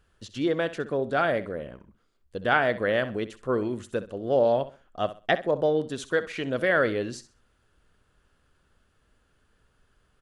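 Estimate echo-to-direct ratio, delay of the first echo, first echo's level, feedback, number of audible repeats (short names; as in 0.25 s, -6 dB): -14.0 dB, 65 ms, -14.5 dB, 26%, 2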